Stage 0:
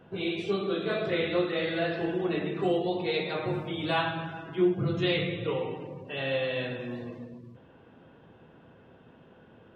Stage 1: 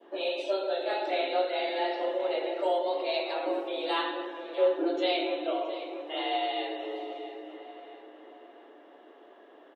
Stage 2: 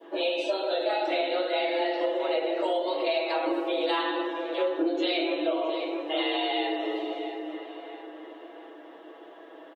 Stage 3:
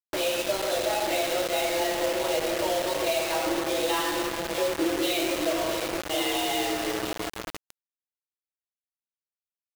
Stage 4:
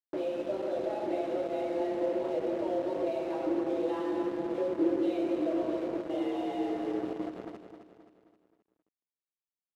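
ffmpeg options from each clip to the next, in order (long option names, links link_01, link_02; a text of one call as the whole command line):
ffmpeg -i in.wav -filter_complex "[0:a]asplit=2[link_01][link_02];[link_02]adelay=669,lowpass=frequency=3200:poles=1,volume=-12dB,asplit=2[link_03][link_04];[link_04]adelay=669,lowpass=frequency=3200:poles=1,volume=0.45,asplit=2[link_05][link_06];[link_06]adelay=669,lowpass=frequency=3200:poles=1,volume=0.45,asplit=2[link_07][link_08];[link_08]adelay=669,lowpass=frequency=3200:poles=1,volume=0.45,asplit=2[link_09][link_10];[link_10]adelay=669,lowpass=frequency=3200:poles=1,volume=0.45[link_11];[link_01][link_03][link_05][link_07][link_09][link_11]amix=inputs=6:normalize=0,afreqshift=190,adynamicequalizer=threshold=0.00501:dfrequency=1500:dqfactor=1:tfrequency=1500:tqfactor=1:attack=5:release=100:ratio=0.375:range=2.5:mode=cutabove:tftype=bell" out.wav
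ffmpeg -i in.wav -af "aecho=1:1:6.2:0.85,acompressor=threshold=-28dB:ratio=5,volume=4.5dB" out.wav
ffmpeg -i in.wav -af "acrusher=bits=4:mix=0:aa=0.000001" out.wav
ffmpeg -i in.wav -filter_complex "[0:a]bandpass=frequency=290:width_type=q:width=1.2:csg=0,asplit=2[link_01][link_02];[link_02]aecho=0:1:264|528|792|1056|1320:0.355|0.167|0.0784|0.0368|0.0173[link_03];[link_01][link_03]amix=inputs=2:normalize=0" out.wav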